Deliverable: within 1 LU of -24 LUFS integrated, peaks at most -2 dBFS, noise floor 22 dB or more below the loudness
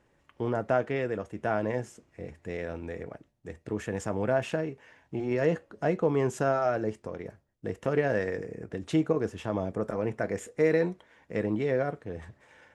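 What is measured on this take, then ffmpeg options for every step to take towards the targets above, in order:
loudness -30.5 LUFS; peak -11.5 dBFS; loudness target -24.0 LUFS
-> -af "volume=6.5dB"

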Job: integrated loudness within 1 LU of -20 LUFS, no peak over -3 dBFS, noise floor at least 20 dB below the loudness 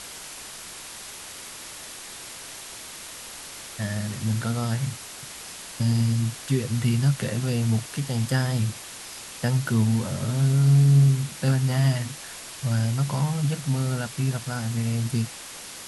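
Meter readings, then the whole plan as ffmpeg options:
noise floor -40 dBFS; noise floor target -45 dBFS; loudness -24.5 LUFS; peak -10.0 dBFS; loudness target -20.0 LUFS
-> -af "afftdn=nr=6:nf=-40"
-af "volume=4.5dB"

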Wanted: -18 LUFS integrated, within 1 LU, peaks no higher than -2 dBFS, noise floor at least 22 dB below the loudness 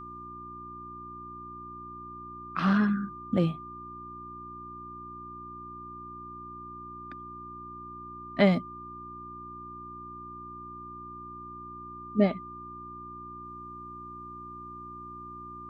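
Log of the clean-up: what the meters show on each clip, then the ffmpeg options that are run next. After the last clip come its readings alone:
hum 60 Hz; harmonics up to 360 Hz; hum level -47 dBFS; steady tone 1200 Hz; tone level -41 dBFS; loudness -35.0 LUFS; peak -10.0 dBFS; loudness target -18.0 LUFS
-> -af "bandreject=f=60:t=h:w=4,bandreject=f=120:t=h:w=4,bandreject=f=180:t=h:w=4,bandreject=f=240:t=h:w=4,bandreject=f=300:t=h:w=4,bandreject=f=360:t=h:w=4"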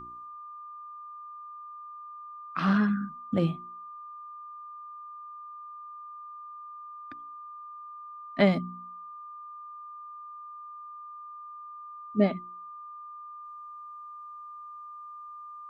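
hum none; steady tone 1200 Hz; tone level -41 dBFS
-> -af "bandreject=f=1.2k:w=30"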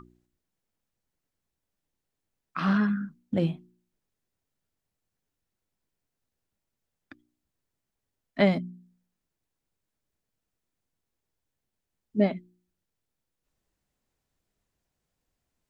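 steady tone none; loudness -27.5 LUFS; peak -10.0 dBFS; loudness target -18.0 LUFS
-> -af "volume=9.5dB,alimiter=limit=-2dB:level=0:latency=1"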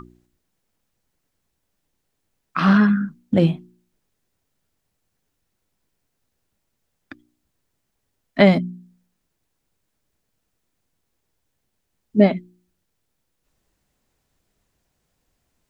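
loudness -18.5 LUFS; peak -2.0 dBFS; noise floor -76 dBFS

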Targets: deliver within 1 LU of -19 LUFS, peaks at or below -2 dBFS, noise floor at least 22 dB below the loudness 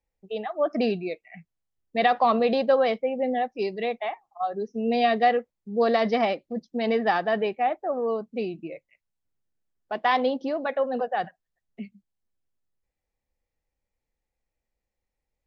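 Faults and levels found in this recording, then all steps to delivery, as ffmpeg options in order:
loudness -25.5 LUFS; peak -9.0 dBFS; loudness target -19.0 LUFS
-> -af "volume=6.5dB"

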